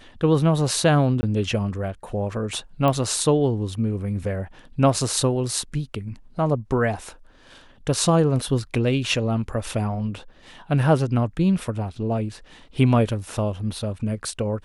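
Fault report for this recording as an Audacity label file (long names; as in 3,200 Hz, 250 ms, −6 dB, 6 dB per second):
1.210000	1.230000	drop-out 20 ms
2.880000	2.880000	click −11 dBFS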